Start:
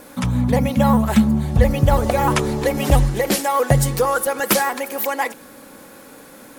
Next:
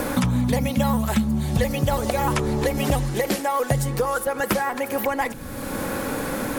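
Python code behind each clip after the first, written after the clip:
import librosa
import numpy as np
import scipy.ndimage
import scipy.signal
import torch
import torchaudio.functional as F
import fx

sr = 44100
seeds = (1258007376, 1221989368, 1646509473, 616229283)

y = fx.band_squash(x, sr, depth_pct=100)
y = F.gain(torch.from_numpy(y), -5.0).numpy()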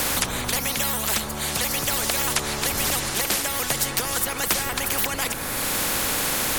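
y = fx.dmg_wind(x, sr, seeds[0], corner_hz=87.0, level_db=-25.0)
y = fx.spectral_comp(y, sr, ratio=4.0)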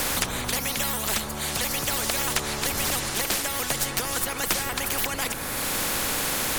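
y = fx.tracing_dist(x, sr, depth_ms=0.027)
y = F.gain(torch.from_numpy(y), -2.0).numpy()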